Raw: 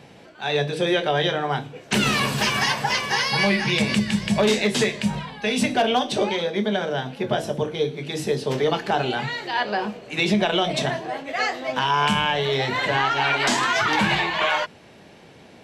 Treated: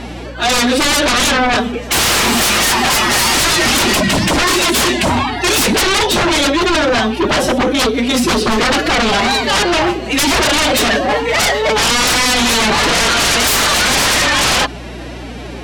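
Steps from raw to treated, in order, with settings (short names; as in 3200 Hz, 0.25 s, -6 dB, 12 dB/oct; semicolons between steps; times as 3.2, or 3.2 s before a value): formant-preserving pitch shift +9 st; sine folder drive 17 dB, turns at -7.5 dBFS; hum 60 Hz, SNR 17 dB; gain -2.5 dB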